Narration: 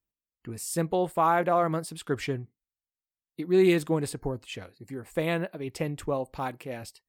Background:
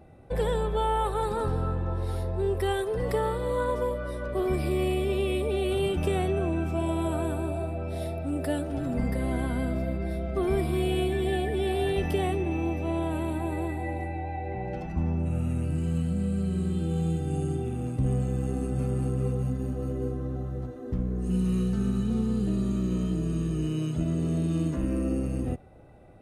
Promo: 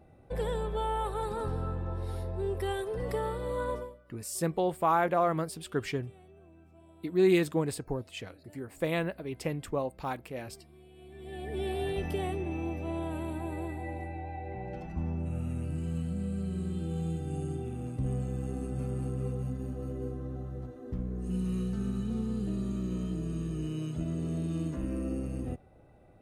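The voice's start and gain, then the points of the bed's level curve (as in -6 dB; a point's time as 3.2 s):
3.65 s, -2.5 dB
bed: 3.75 s -5.5 dB
4.04 s -29 dB
10.93 s -29 dB
11.58 s -6 dB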